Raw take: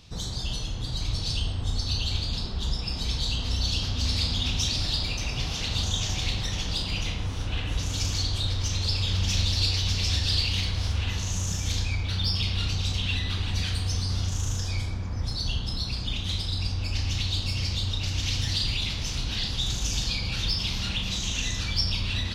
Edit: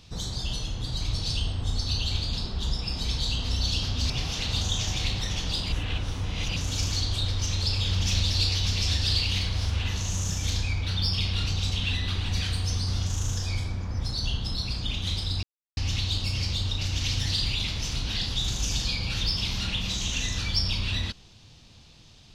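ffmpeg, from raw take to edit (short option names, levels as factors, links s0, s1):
-filter_complex "[0:a]asplit=6[s0][s1][s2][s3][s4][s5];[s0]atrim=end=4.102[s6];[s1]atrim=start=5.318:end=6.942[s7];[s2]atrim=start=6.938:end=7.782,asetpts=PTS-STARTPTS,areverse[s8];[s3]atrim=start=7.778:end=16.65,asetpts=PTS-STARTPTS,afade=t=out:st=8.868:d=0.004:c=hsin[s9];[s4]atrim=start=16.65:end=16.99,asetpts=PTS-STARTPTS,volume=0[s10];[s5]atrim=start=16.99,asetpts=PTS-STARTPTS,afade=t=in:d=0.004:c=hsin[s11];[s6][s7]acrossfade=d=0.004:c1=hsin:c2=hsin[s12];[s12][s8]acrossfade=d=0.004:c1=hsin:c2=hsin[s13];[s9][s10][s11]concat=n=3:v=0:a=1[s14];[s13][s14]acrossfade=d=0.004:c1=hsin:c2=hsin"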